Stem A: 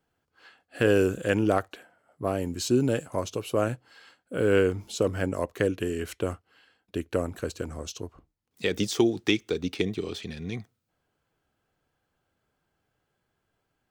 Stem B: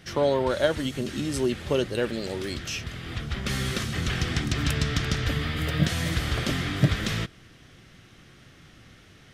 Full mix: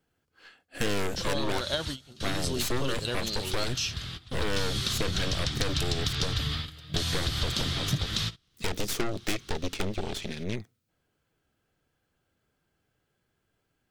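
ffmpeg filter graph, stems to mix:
ffmpeg -i stem1.wav -i stem2.wav -filter_complex "[0:a]aeval=exprs='0.335*(cos(1*acos(clip(val(0)/0.335,-1,1)))-cos(1*PI/2))+0.0075*(cos(3*acos(clip(val(0)/0.335,-1,1)))-cos(3*PI/2))+0.106*(cos(8*acos(clip(val(0)/0.335,-1,1)))-cos(8*PI/2))':channel_layout=same,asoftclip=type=tanh:threshold=-20dB,volume=2.5dB,asplit=2[link_01][link_02];[1:a]equalizer=frequency=250:width_type=o:width=1:gain=-6,equalizer=frequency=500:width_type=o:width=1:gain=-7,equalizer=frequency=1000:width_type=o:width=1:gain=6,equalizer=frequency=2000:width_type=o:width=1:gain=-8,equalizer=frequency=4000:width_type=o:width=1:gain=10,adelay=1100,volume=0dB[link_03];[link_02]apad=whole_len=460284[link_04];[link_03][link_04]sidechaingate=range=-19dB:threshold=-56dB:ratio=16:detection=peak[link_05];[link_01][link_05]amix=inputs=2:normalize=0,equalizer=frequency=880:width=1.1:gain=-5.5,acompressor=threshold=-24dB:ratio=6" out.wav

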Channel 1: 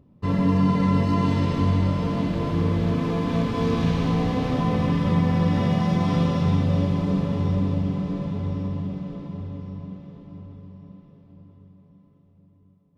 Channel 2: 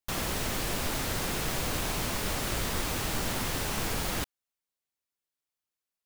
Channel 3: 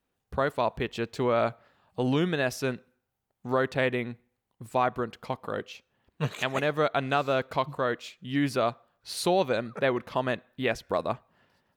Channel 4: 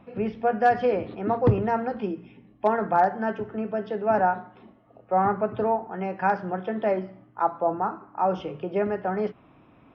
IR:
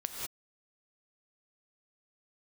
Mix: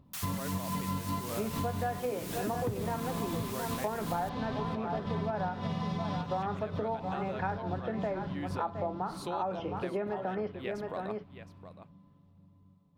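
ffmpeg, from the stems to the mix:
-filter_complex "[0:a]equalizer=frequency=400:width_type=o:width=0.67:gain=-7,equalizer=frequency=1000:width_type=o:width=0.67:gain=6,equalizer=frequency=4000:width_type=o:width=0.67:gain=7,volume=-3.5dB[link_01];[1:a]highpass=1100,aemphasis=mode=production:type=cd,adelay=50,volume=-9.5dB[link_02];[2:a]volume=-11.5dB,asplit=3[link_03][link_04][link_05];[link_04]volume=-13dB[link_06];[3:a]adelay=1200,volume=0.5dB,asplit=2[link_07][link_08];[link_08]volume=-10.5dB[link_09];[link_05]apad=whole_len=572417[link_10];[link_01][link_10]sidechaincompress=threshold=-48dB:ratio=8:attack=48:release=101[link_11];[link_06][link_09]amix=inputs=2:normalize=0,aecho=0:1:716:1[link_12];[link_11][link_02][link_03][link_07][link_12]amix=inputs=5:normalize=0,acompressor=threshold=-31dB:ratio=6"

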